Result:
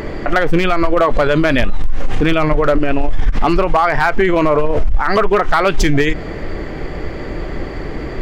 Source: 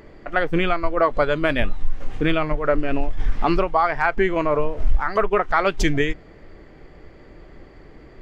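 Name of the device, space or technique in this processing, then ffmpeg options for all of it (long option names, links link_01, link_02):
loud club master: -af "acompressor=threshold=-19dB:ratio=3,asoftclip=type=hard:threshold=-15.5dB,alimiter=level_in=25.5dB:limit=-1dB:release=50:level=0:latency=1,volume=-5dB"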